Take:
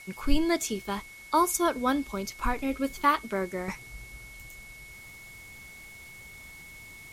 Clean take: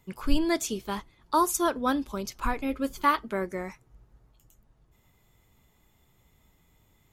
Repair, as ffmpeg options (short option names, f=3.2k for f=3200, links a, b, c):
-filter_complex "[0:a]bandreject=f=2.2k:w=30,asplit=3[a][b][c];[a]afade=t=out:st=4.37:d=0.02[d];[b]highpass=f=140:w=0.5412,highpass=f=140:w=1.3066,afade=t=in:st=4.37:d=0.02,afade=t=out:st=4.49:d=0.02[e];[c]afade=t=in:st=4.49:d=0.02[f];[d][e][f]amix=inputs=3:normalize=0,afwtdn=0.0022,asetnsamples=n=441:p=0,asendcmd='3.68 volume volume -9.5dB',volume=0dB"